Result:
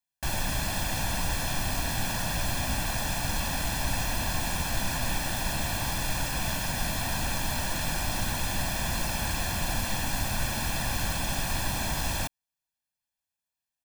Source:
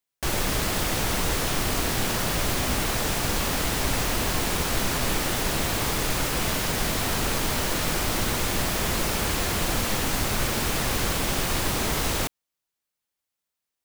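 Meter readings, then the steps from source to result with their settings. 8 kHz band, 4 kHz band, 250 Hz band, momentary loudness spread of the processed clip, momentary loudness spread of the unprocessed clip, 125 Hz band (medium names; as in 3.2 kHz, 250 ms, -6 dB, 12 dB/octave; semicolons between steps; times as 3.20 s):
-4.5 dB, -5.0 dB, -6.0 dB, 0 LU, 0 LU, -2.5 dB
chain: comb 1.2 ms, depth 74%; trim -6.5 dB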